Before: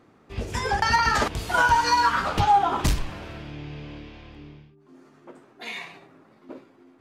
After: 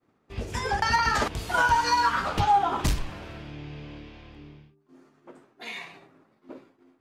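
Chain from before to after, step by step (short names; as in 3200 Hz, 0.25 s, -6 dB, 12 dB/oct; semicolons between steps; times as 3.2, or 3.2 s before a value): expander -49 dBFS; gain -2.5 dB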